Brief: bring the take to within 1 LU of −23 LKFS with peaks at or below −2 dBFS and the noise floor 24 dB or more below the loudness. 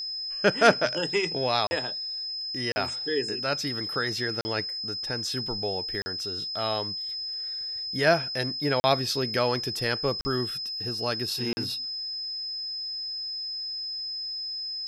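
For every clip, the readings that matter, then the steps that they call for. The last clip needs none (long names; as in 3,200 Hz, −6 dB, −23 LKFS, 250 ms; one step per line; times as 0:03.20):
number of dropouts 7; longest dropout 40 ms; interfering tone 5,100 Hz; level of the tone −31 dBFS; integrated loudness −27.5 LKFS; sample peak −5.5 dBFS; target loudness −23.0 LKFS
→ repair the gap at 0:01.67/0:02.72/0:04.41/0:06.02/0:08.80/0:10.21/0:11.53, 40 ms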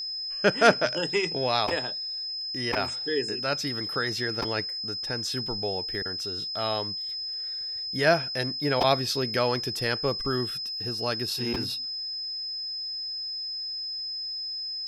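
number of dropouts 0; interfering tone 5,100 Hz; level of the tone −31 dBFS
→ notch filter 5,100 Hz, Q 30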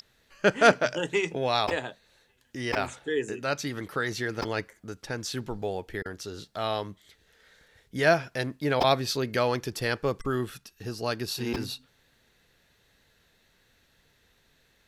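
interfering tone none found; integrated loudness −28.5 LKFS; sample peak −6.0 dBFS; target loudness −23.0 LKFS
→ level +5.5 dB
brickwall limiter −2 dBFS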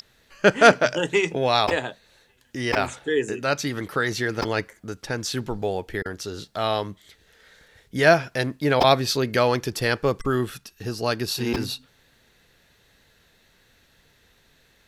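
integrated loudness −23.0 LKFS; sample peak −2.0 dBFS; background noise floor −61 dBFS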